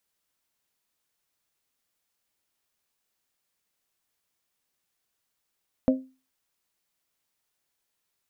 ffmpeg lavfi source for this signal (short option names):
-f lavfi -i "aevalsrc='0.178*pow(10,-3*t/0.32)*sin(2*PI*261*t)+0.106*pow(10,-3*t/0.197)*sin(2*PI*522*t)+0.0631*pow(10,-3*t/0.173)*sin(2*PI*626.4*t)':d=0.89:s=44100"